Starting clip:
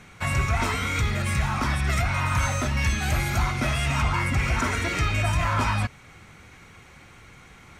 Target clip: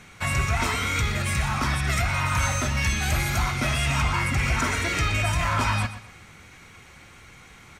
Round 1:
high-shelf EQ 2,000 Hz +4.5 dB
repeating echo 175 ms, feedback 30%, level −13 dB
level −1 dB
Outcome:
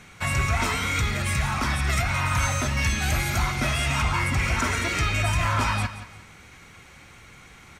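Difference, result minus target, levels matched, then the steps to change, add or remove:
echo 53 ms late
change: repeating echo 122 ms, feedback 30%, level −13 dB

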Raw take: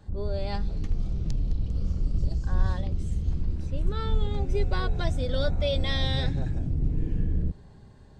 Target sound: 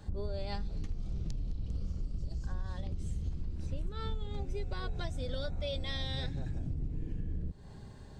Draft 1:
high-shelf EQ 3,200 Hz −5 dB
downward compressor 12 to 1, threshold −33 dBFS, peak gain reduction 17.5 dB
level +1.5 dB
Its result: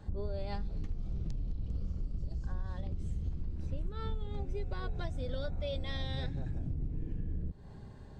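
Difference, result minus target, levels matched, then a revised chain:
8,000 Hz band −7.5 dB
high-shelf EQ 3,200 Hz +4.5 dB
downward compressor 12 to 1, threshold −33 dBFS, peak gain reduction 17.5 dB
level +1.5 dB

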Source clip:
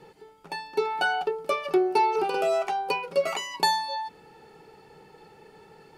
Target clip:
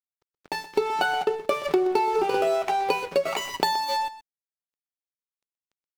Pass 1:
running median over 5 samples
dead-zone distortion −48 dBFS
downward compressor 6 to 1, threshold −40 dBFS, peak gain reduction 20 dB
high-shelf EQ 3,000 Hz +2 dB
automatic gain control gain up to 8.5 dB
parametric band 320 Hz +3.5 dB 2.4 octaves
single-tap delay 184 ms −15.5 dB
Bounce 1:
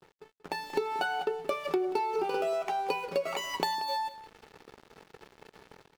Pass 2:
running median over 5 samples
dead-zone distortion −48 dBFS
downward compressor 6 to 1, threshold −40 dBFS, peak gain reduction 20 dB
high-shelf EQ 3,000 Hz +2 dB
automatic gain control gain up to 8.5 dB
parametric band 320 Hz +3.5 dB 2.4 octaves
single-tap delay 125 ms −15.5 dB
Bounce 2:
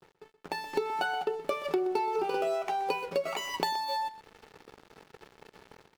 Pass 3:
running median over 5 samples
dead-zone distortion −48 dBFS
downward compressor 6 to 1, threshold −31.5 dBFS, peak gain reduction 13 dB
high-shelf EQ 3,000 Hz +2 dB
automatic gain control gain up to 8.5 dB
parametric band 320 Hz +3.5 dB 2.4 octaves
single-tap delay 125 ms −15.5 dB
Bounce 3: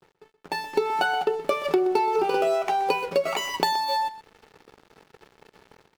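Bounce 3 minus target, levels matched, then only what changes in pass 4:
dead-zone distortion: distortion −6 dB
change: dead-zone distortion −40.5 dBFS

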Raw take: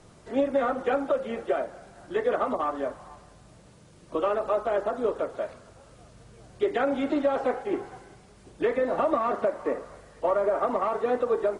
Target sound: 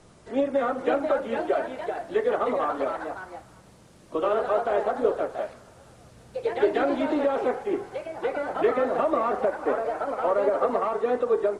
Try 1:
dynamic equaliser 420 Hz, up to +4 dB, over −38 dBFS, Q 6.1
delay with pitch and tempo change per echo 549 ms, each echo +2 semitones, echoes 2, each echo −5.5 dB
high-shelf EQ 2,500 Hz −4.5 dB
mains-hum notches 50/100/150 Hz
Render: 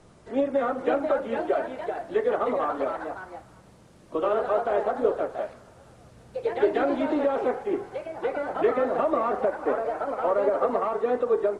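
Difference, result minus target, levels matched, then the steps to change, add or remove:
4,000 Hz band −2.5 dB
remove: high-shelf EQ 2,500 Hz −4.5 dB

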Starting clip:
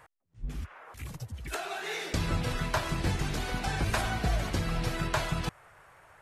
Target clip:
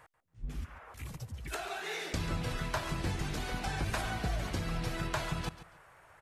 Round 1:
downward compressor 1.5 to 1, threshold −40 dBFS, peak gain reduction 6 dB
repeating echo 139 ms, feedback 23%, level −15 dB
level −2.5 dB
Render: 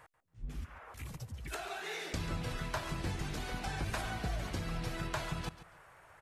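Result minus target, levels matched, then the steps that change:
downward compressor: peak gain reduction +3 dB
change: downward compressor 1.5 to 1, threshold −31.5 dBFS, peak gain reduction 3 dB

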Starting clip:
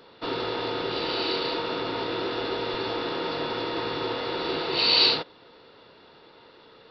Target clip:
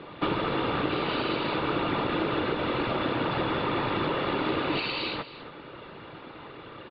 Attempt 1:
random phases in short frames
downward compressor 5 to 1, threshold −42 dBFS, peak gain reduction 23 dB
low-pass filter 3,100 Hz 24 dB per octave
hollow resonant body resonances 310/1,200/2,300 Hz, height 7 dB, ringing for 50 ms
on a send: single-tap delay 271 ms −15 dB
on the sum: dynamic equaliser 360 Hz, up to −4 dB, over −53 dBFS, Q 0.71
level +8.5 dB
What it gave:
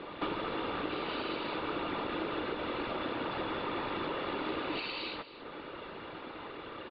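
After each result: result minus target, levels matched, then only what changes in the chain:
downward compressor: peak gain reduction +7 dB; 125 Hz band −5.0 dB
change: downward compressor 5 to 1, threshold −33 dBFS, peak gain reduction 15.5 dB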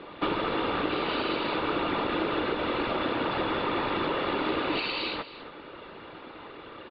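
125 Hz band −6.0 dB
add after low-pass filter: parametric band 130 Hz +9 dB 0.88 octaves

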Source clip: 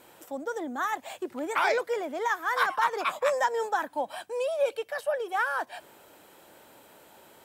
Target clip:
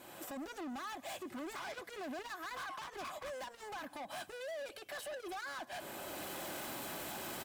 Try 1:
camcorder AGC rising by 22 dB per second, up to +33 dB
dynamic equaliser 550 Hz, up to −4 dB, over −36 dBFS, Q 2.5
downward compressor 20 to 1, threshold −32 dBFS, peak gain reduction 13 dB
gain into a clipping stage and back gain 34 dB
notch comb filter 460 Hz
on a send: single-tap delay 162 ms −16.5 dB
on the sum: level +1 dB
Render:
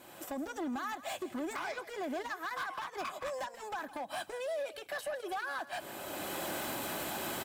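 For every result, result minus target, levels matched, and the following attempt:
echo-to-direct +9 dB; gain into a clipping stage and back: distortion −6 dB
camcorder AGC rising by 22 dB per second, up to +33 dB
dynamic equaliser 550 Hz, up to −4 dB, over −36 dBFS, Q 2.5
downward compressor 20 to 1, threshold −32 dBFS, peak gain reduction 13 dB
gain into a clipping stage and back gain 34 dB
notch comb filter 460 Hz
on a send: single-tap delay 162 ms −25.5 dB
on the sum: level +1 dB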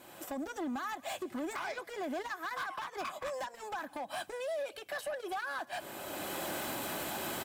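gain into a clipping stage and back: distortion −6 dB
camcorder AGC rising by 22 dB per second, up to +33 dB
dynamic equaliser 550 Hz, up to −4 dB, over −36 dBFS, Q 2.5
downward compressor 20 to 1, threshold −32 dBFS, peak gain reduction 13 dB
gain into a clipping stage and back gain 42 dB
notch comb filter 460 Hz
on a send: single-tap delay 162 ms −25.5 dB
on the sum: level +1 dB

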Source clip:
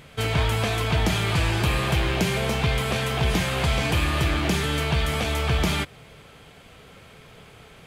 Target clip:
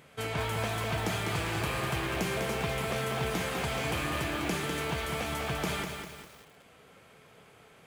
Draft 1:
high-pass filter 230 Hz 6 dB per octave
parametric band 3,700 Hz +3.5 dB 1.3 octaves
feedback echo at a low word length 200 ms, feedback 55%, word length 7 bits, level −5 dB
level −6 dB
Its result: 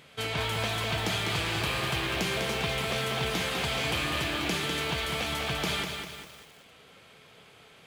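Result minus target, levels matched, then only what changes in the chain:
4,000 Hz band +4.5 dB
change: parametric band 3,700 Hz −5 dB 1.3 octaves

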